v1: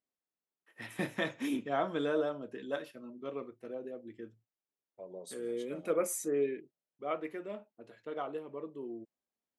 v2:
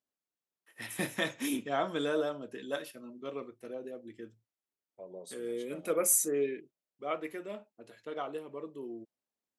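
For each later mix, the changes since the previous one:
first voice: remove low-pass 2.2 kHz 6 dB/octave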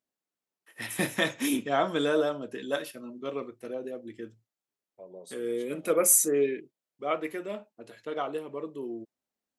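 first voice +5.5 dB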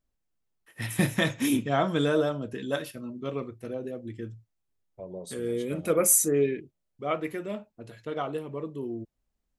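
second voice +5.5 dB; master: remove high-pass 280 Hz 12 dB/octave

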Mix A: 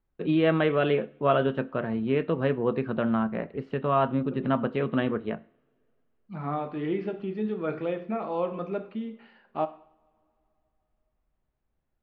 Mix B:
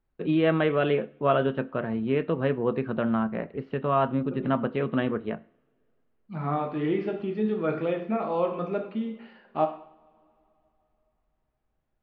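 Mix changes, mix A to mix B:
first voice: add low-pass 4.4 kHz; second voice: send +8.5 dB

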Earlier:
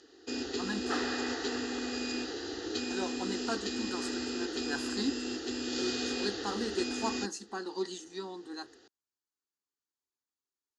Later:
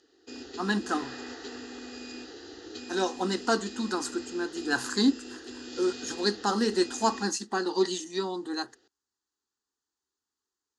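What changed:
speech +9.5 dB; background -6.5 dB

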